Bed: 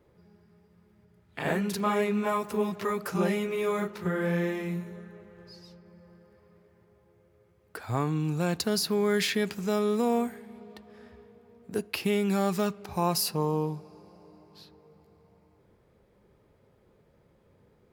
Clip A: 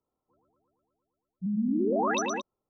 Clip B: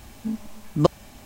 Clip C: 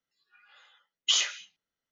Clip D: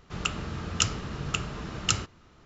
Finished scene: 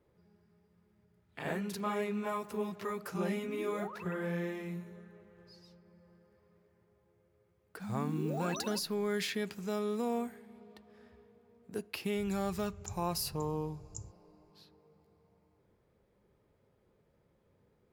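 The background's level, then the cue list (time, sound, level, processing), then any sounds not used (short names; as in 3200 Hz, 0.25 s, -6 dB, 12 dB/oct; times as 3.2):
bed -8 dB
1.85 add A -17.5 dB + sine-wave speech
6.38 add A -12 dB + level-crossing sampler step -43 dBFS
12.06 add D -13.5 dB + inverse Chebyshev band-stop 280–4000 Hz
not used: B, C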